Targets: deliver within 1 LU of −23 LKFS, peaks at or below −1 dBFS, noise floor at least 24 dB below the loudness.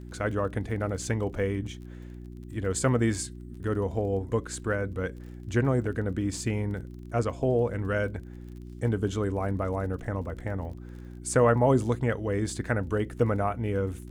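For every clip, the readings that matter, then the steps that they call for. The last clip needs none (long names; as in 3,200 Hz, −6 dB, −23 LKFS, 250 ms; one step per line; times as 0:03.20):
crackle rate 29 per second; mains hum 60 Hz; hum harmonics up to 360 Hz; level of the hum −39 dBFS; integrated loudness −29.0 LKFS; sample peak −10.0 dBFS; target loudness −23.0 LKFS
→ click removal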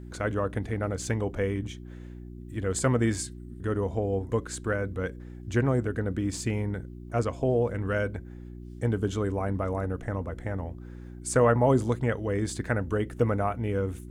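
crackle rate 0 per second; mains hum 60 Hz; hum harmonics up to 360 Hz; level of the hum −39 dBFS
→ hum removal 60 Hz, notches 6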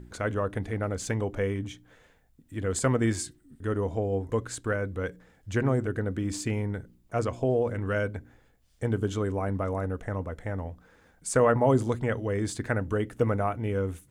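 mains hum none found; integrated loudness −29.5 LKFS; sample peak −10.5 dBFS; target loudness −23.0 LKFS
→ level +6.5 dB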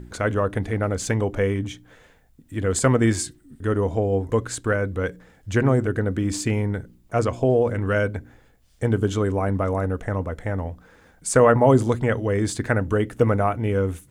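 integrated loudness −23.0 LKFS; sample peak −4.0 dBFS; background noise floor −56 dBFS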